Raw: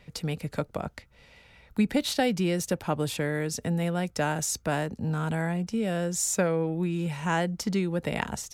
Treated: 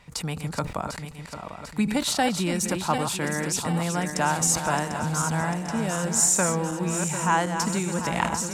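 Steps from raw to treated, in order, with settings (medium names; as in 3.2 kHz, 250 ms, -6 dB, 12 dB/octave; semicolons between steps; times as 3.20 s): backward echo that repeats 373 ms, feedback 74%, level -8 dB; graphic EQ 500/1000/8000 Hz -5/+10/+9 dB; decay stretcher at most 110 dB/s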